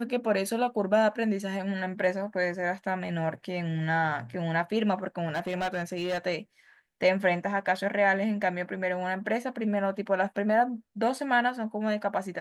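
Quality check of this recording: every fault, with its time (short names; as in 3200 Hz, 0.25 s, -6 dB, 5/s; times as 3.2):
5.3–6.27 clipped -26 dBFS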